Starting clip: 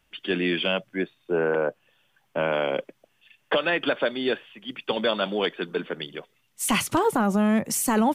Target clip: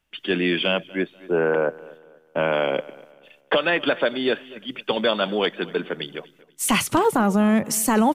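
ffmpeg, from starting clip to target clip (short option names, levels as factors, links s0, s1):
-filter_complex "[0:a]agate=range=0.355:threshold=0.00112:ratio=16:detection=peak,asplit=2[s0][s1];[s1]adelay=243,lowpass=f=3800:p=1,volume=0.0944,asplit=2[s2][s3];[s3]adelay=243,lowpass=f=3800:p=1,volume=0.37,asplit=2[s4][s5];[s5]adelay=243,lowpass=f=3800:p=1,volume=0.37[s6];[s2][s4][s6]amix=inputs=3:normalize=0[s7];[s0][s7]amix=inputs=2:normalize=0,volume=1.41"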